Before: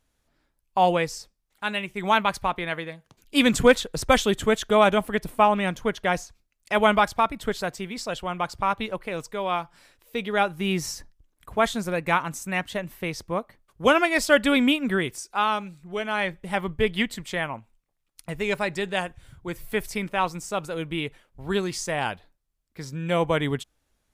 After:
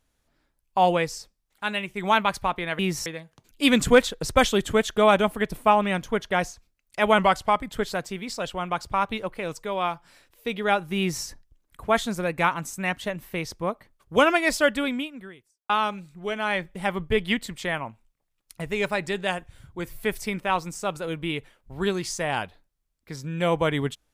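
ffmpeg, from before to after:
-filter_complex "[0:a]asplit=6[a][b][c][d][e][f];[a]atrim=end=2.792[g];[b]atrim=start=10.658:end=10.932[h];[c]atrim=start=2.788:end=6.914[i];[d]atrim=start=6.91:end=7.42,asetpts=PTS-STARTPTS,asetrate=40572,aresample=44100[j];[e]atrim=start=7.416:end=15.38,asetpts=PTS-STARTPTS,afade=t=out:st=6.764:d=1.2:c=qua[k];[f]atrim=start=15.38,asetpts=PTS-STARTPTS,afade=t=in:d=0.004:c=hsin[l];[g][h]acrossfade=d=0.004:c1=hsin:c2=hsin[m];[m][i]acrossfade=d=0.004:c1=hsin:c2=hsin[n];[n][j]acrossfade=d=0.004:c1=hsin:c2=hsin[o];[k][l]concat=n=2:v=0:a=1[p];[o][p]acrossfade=d=0.004:c1=hsin:c2=hsin"

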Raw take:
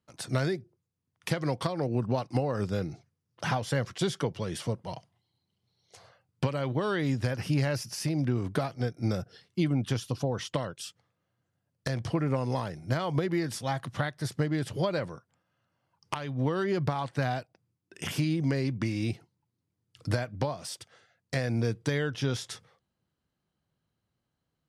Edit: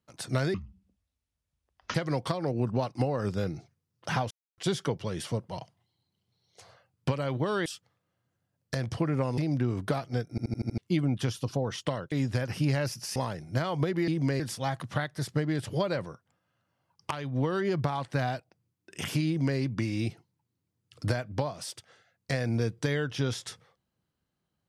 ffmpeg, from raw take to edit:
-filter_complex "[0:a]asplit=17[a][b][c][d][e][f][g][h][i][j][k][l][m][n][o][p][q];[a]atrim=end=0.544[r];[b]atrim=start=0.54:end=1.3,asetpts=PTS-STARTPTS,asetrate=23814,aresample=44100[s];[c]atrim=start=1.296:end=3.66,asetpts=PTS-STARTPTS,afade=t=out:st=2.36:d=0.004:c=hsin[t];[d]atrim=start=3.66:end=3.93,asetpts=PTS-STARTPTS,volume=0[u];[e]atrim=start=3.93:end=7.012,asetpts=PTS-STARTPTS,afade=t=in:d=0.004:c=hsin[v];[f]atrim=start=10.788:end=12.512[w];[g]atrim=start=8.048:end=9.052[x];[h]atrim=start=8.968:end=9.052[y];[i]atrim=start=8.968:end=9.052[z];[j]atrim=start=8.968:end=9.052[aa];[k]atrim=start=8.968:end=9.052[ab];[l]atrim=start=8.968:end=9.052[ac];[m]atrim=start=9.448:end=10.792[ad];[n]atrim=start=7.008:end=8.052[ae];[o]atrim=start=12.508:end=13.432[af];[p]atrim=start=18.298:end=18.622[ag];[q]atrim=start=13.428[ah];[r][s]acrossfade=d=0.004:c1=hsin:c2=hsin[ai];[t][u][v]concat=n=3:v=0:a=1[aj];[ai][aj]acrossfade=d=0.004:c1=hsin:c2=hsin[ak];[ak][w]acrossfade=d=0.004:c1=hsin:c2=hsin[al];[al][x]acrossfade=d=0.004:c1=hsin:c2=hsin[am];[am][y]acrossfade=d=0.004:c1=hsin:c2=hsin[an];[an][z]acrossfade=d=0.004:c1=hsin:c2=hsin[ao];[ao][aa]acrossfade=d=0.004:c1=hsin:c2=hsin[ap];[ap][ab]acrossfade=d=0.004:c1=hsin:c2=hsin[aq];[aq][ac]acrossfade=d=0.004:c1=hsin:c2=hsin[ar];[ar][ad]acrossfade=d=0.004:c1=hsin:c2=hsin[as];[as][ae]acrossfade=d=0.004:c1=hsin:c2=hsin[at];[at][af]acrossfade=d=0.004:c1=hsin:c2=hsin[au];[au][ag]acrossfade=d=0.004:c1=hsin:c2=hsin[av];[av][ah]acrossfade=d=0.004:c1=hsin:c2=hsin"

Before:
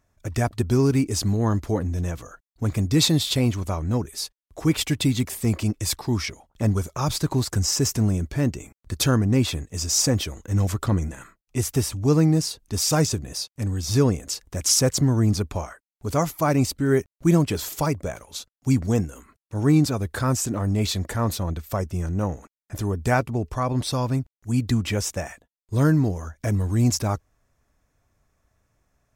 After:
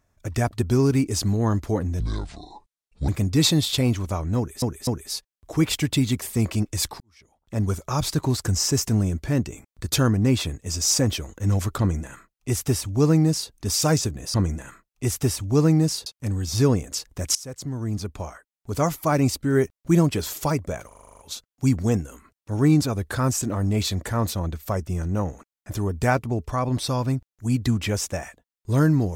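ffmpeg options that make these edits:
-filter_complex "[0:a]asplit=17[a][b][c][d][e][f][g][h][i][j][k][l][m][n][o][p][q];[a]atrim=end=2.004[r];[b]atrim=start=2:end=2.66,asetpts=PTS-STARTPTS,asetrate=26901,aresample=44100[s];[c]atrim=start=2.656:end=4.202[t];[d]atrim=start=3.948:end=4.202[u];[e]atrim=start=3.948:end=6.08,asetpts=PTS-STARTPTS,afade=t=out:st=2.128:d=0.004:c=hsin[v];[f]atrim=start=6.08:end=13.422,asetpts=PTS-STARTPTS,afade=t=in:d=0.71:c=qua[w];[g]atrim=start=10.868:end=12.592[x];[h]atrim=start=13.418:end=14.71,asetpts=PTS-STARTPTS,afade=t=out:st=1.288:d=0.004:c=hsin:silence=0.0707946[y];[i]atrim=start=14.71:end=18.272,asetpts=PTS-STARTPTS,afade=t=in:d=1.48:silence=0.0707946[z];[j]atrim=start=18.228:end=18.272[aa];[k]atrim=start=18.228:end=18.272[ab];[l]atrim=start=18.228:end=18.272[ac];[m]atrim=start=18.228:end=18.272[ad];[n]atrim=start=18.228:end=18.272[ae];[o]atrim=start=18.228:end=18.272[af];[p]atrim=start=18.228:end=18.272[ag];[q]atrim=start=18.228[ah];[r][s]acrossfade=d=0.004:c1=hsin:c2=hsin[ai];[ai][t]acrossfade=d=0.004:c1=hsin:c2=hsin[aj];[aj][u]acrossfade=d=0.004:c1=hsin:c2=hsin[ak];[v][w]concat=n=2:v=0:a=1[al];[ak][al]acrossfade=d=0.004:c1=hsin:c2=hsin[am];[am][x]acrossfade=d=0.004:c1=hsin:c2=hsin[an];[y][z]concat=n=2:v=0:a=1[ao];[an][ao]acrossfade=d=0.004:c1=hsin:c2=hsin[ap];[ap][aa]acrossfade=d=0.004:c1=hsin:c2=hsin[aq];[aq][ab]acrossfade=d=0.004:c1=hsin:c2=hsin[ar];[ar][ac]acrossfade=d=0.004:c1=hsin:c2=hsin[as];[as][ad]acrossfade=d=0.004:c1=hsin:c2=hsin[at];[at][ae]acrossfade=d=0.004:c1=hsin:c2=hsin[au];[au][af]acrossfade=d=0.004:c1=hsin:c2=hsin[av];[av][ag]acrossfade=d=0.004:c1=hsin:c2=hsin[aw];[aw][ah]acrossfade=d=0.004:c1=hsin:c2=hsin"

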